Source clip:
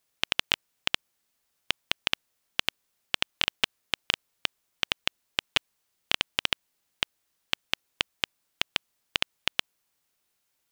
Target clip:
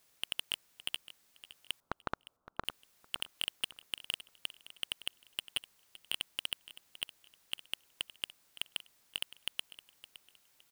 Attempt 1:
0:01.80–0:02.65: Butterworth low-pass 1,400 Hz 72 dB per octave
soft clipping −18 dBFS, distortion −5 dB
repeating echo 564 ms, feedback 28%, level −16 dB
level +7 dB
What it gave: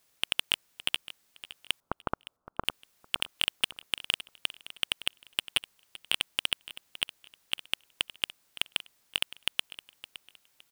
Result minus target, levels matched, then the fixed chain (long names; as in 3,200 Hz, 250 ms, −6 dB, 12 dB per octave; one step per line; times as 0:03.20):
soft clipping: distortion −4 dB
0:01.80–0:02.65: Butterworth low-pass 1,400 Hz 72 dB per octave
soft clipping −28.5 dBFS, distortion −1 dB
repeating echo 564 ms, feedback 28%, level −16 dB
level +7 dB